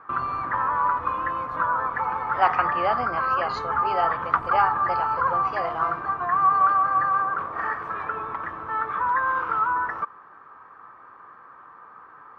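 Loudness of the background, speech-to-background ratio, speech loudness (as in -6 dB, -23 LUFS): -24.5 LUFS, -3.0 dB, -27.5 LUFS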